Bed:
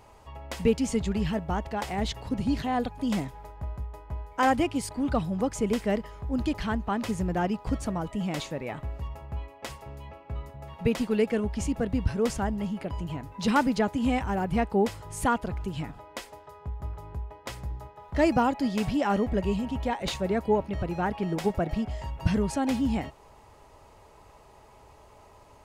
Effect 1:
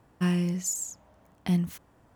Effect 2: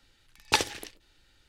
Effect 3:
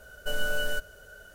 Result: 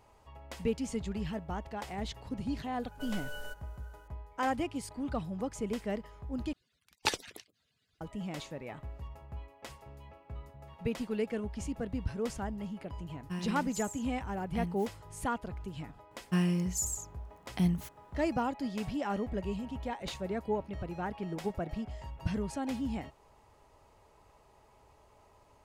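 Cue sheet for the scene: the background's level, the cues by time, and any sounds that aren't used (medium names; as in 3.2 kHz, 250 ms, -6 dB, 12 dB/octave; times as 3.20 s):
bed -8.5 dB
2.74 s: add 3 -13.5 dB
6.53 s: replace with 2 -6.5 dB + harmonic-percussive separation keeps percussive
13.09 s: add 1 -12 dB
16.11 s: add 1 -3 dB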